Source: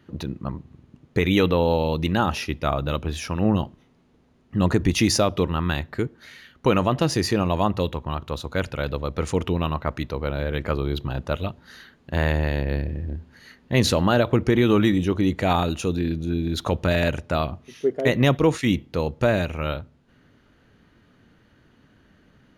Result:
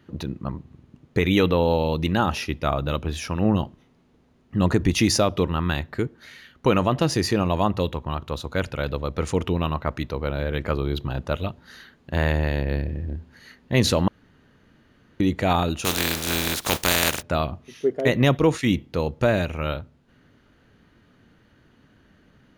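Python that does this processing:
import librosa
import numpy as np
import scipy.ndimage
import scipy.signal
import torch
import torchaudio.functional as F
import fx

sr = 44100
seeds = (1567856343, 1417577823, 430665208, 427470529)

y = fx.spec_flatten(x, sr, power=0.28, at=(15.84, 17.21), fade=0.02)
y = fx.edit(y, sr, fx.room_tone_fill(start_s=14.08, length_s=1.12), tone=tone)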